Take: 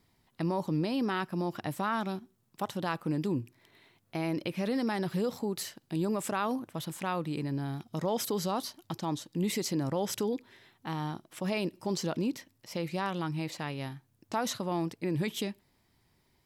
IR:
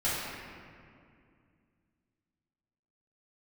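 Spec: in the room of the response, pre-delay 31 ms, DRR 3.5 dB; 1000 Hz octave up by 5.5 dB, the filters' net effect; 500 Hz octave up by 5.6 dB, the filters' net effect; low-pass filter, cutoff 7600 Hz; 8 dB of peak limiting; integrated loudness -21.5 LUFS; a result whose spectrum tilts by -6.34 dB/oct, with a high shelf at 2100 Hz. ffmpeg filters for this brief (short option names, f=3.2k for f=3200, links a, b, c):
-filter_complex "[0:a]lowpass=7.6k,equalizer=f=500:t=o:g=6,equalizer=f=1k:t=o:g=6,highshelf=f=2.1k:g=-5.5,alimiter=limit=-22.5dB:level=0:latency=1,asplit=2[a][b];[1:a]atrim=start_sample=2205,adelay=31[c];[b][c]afir=irnorm=-1:irlink=0,volume=-13.5dB[d];[a][d]amix=inputs=2:normalize=0,volume=10.5dB"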